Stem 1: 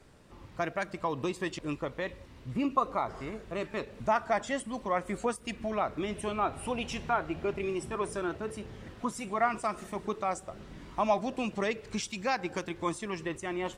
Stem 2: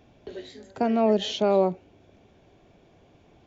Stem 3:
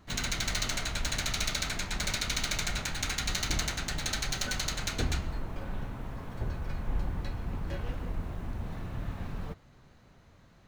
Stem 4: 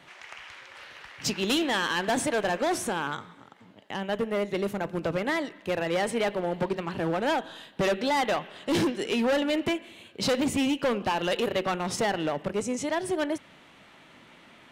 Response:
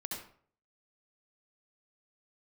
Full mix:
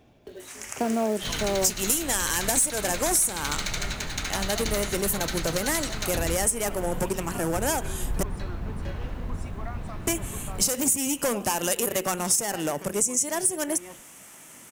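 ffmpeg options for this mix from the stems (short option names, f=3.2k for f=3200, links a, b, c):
-filter_complex "[0:a]acompressor=threshold=-35dB:ratio=2,adelay=250,volume=-7dB[a];[1:a]acrusher=bits=5:mode=log:mix=0:aa=0.000001,tremolo=f=1.1:d=0.43,volume=-0.5dB[b];[2:a]adelay=1150,volume=-1dB,asplit=2[c][d];[d]volume=-6dB[e];[3:a]aexciter=amount=10.2:drive=8.7:freq=6k,adelay=400,volume=1dB,asplit=3[f][g][h];[f]atrim=end=8.23,asetpts=PTS-STARTPTS,afade=t=out:st=8.226:d=0.004:c=hsin[i];[g]atrim=start=8.23:end=10.07,asetpts=PTS-STARTPTS,volume=0[j];[h]atrim=start=10.07,asetpts=PTS-STARTPTS,afade=t=in:d=0.004:c=hsin[k];[i][j][k]concat=n=3:v=0:a=1[l];[4:a]atrim=start_sample=2205[m];[e][m]afir=irnorm=-1:irlink=0[n];[a][b][c][l][n]amix=inputs=5:normalize=0,volume=5dB,asoftclip=hard,volume=-5dB,acompressor=threshold=-21dB:ratio=5"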